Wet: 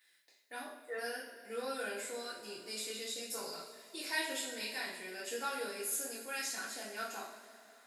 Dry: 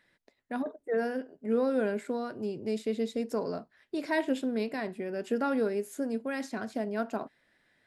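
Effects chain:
first difference
coupled-rooms reverb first 0.55 s, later 3.2 s, from −16 dB, DRR −8 dB
level +3 dB

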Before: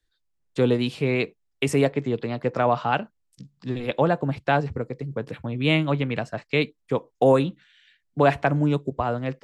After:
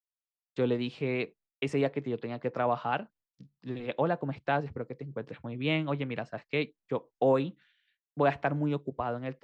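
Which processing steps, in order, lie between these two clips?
low-shelf EQ 87 Hz −10.5 dB
downward expander −50 dBFS
high-frequency loss of the air 120 metres
level −6.5 dB

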